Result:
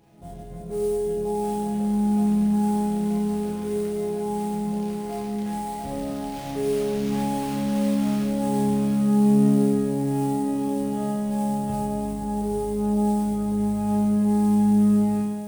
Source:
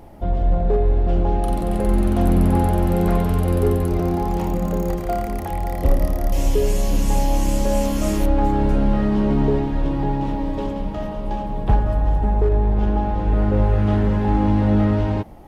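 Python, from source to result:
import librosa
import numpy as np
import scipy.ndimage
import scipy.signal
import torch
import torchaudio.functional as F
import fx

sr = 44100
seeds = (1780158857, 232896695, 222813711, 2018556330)

p1 = scipy.signal.sosfilt(scipy.signal.butter(2, 86.0, 'highpass', fs=sr, output='sos'), x)
p2 = fx.peak_eq(p1, sr, hz=1000.0, db=-10.0, octaves=2.8)
p3 = fx.hum_notches(p2, sr, base_hz=60, count=7)
p4 = fx.rider(p3, sr, range_db=10, speed_s=0.5)
p5 = p3 + (p4 * librosa.db_to_amplitude(-1.0))
p6 = fx.resonator_bank(p5, sr, root=49, chord='minor', decay_s=0.78)
p7 = fx.sample_hold(p6, sr, seeds[0], rate_hz=9300.0, jitter_pct=20)
p8 = p7 + fx.echo_split(p7, sr, split_hz=540.0, low_ms=96, high_ms=695, feedback_pct=52, wet_db=-6.5, dry=0)
y = p8 * librosa.db_to_amplitude(6.5)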